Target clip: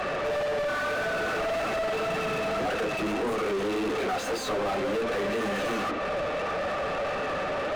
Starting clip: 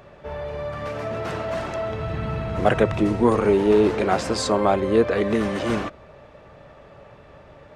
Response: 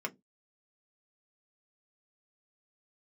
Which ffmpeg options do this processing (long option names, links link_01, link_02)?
-filter_complex "[0:a]asettb=1/sr,asplit=3[link_01][link_02][link_03];[link_01]atrim=end=0.674[link_04];[link_02]atrim=start=0.67:end=1.37,asetpts=PTS-STARTPTS,afade=type=in:duration=0.004:curve=qsin,afade=type=out:start_time=0.696:duration=0.004:curve=qsin,aeval=exprs='val(0)+0.0158*sin(2*PI*1500*n/s)':channel_layout=same[link_05];[link_03]atrim=start=1.366[link_06];[link_04][link_05]acrossfade=duration=0.004:curve1=hsin:curve2=qsin[link_07];[link_07][link_06]acrossfade=duration=0.004:curve1=qsin:curve2=hsin[link_08];[1:a]atrim=start_sample=2205,asetrate=52920,aresample=44100[link_09];[link_08][link_09]afir=irnorm=-1:irlink=0,flanger=delay=3.5:depth=8.1:regen=-22:speed=1.8:shape=triangular,acrossover=split=4400[link_10][link_11];[link_10]acompressor=threshold=-36dB:ratio=6[link_12];[link_12][link_11]amix=inputs=2:normalize=0,asplit=2[link_13][link_14];[link_14]highpass=frequency=720:poles=1,volume=38dB,asoftclip=type=tanh:threshold=-25dB[link_15];[link_13][link_15]amix=inputs=2:normalize=0,lowpass=frequency=1800:poles=1,volume=-6dB,volume=3.5dB"